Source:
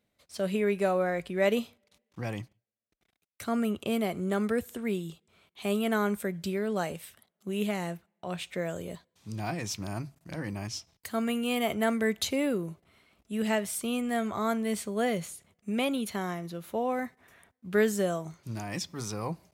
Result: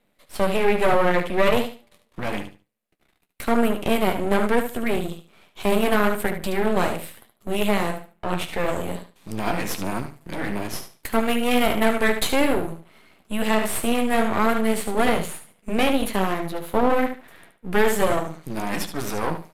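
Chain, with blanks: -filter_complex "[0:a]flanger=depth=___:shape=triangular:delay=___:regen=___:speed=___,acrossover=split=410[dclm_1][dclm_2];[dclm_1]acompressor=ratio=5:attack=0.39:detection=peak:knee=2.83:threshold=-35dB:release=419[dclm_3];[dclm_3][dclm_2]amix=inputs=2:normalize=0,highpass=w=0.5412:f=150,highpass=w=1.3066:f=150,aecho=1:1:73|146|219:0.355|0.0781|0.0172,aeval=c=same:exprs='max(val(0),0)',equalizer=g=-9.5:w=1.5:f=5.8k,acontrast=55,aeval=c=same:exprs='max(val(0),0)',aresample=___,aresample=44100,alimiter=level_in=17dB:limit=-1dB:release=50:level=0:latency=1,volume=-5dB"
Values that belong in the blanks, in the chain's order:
8.4, 7.9, -36, 1.1, 32000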